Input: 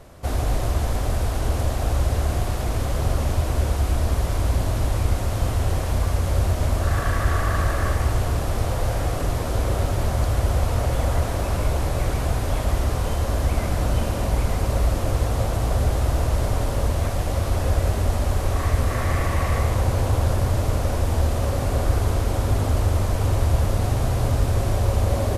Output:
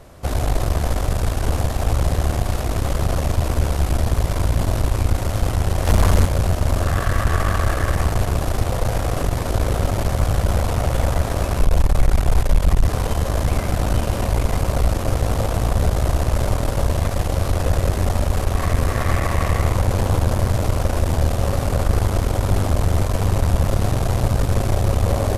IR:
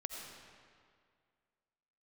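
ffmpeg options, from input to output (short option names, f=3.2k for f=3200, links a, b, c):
-filter_complex "[0:a]asplit=3[a][b][c];[a]afade=t=out:st=5.85:d=0.02[d];[b]acontrast=84,afade=t=in:st=5.85:d=0.02,afade=t=out:st=6.25:d=0.02[e];[c]afade=t=in:st=6.25:d=0.02[f];[d][e][f]amix=inputs=3:normalize=0,asplit=3[g][h][i];[g]afade=t=out:st=11.57:d=0.02[j];[h]asubboost=boost=5:cutoff=52,afade=t=in:st=11.57:d=0.02,afade=t=out:st=12.87:d=0.02[k];[i]afade=t=in:st=12.87:d=0.02[l];[j][k][l]amix=inputs=3:normalize=0,aeval=exprs='(tanh(7.08*val(0)+0.75)-tanh(0.75))/7.08':c=same,volume=6.5dB"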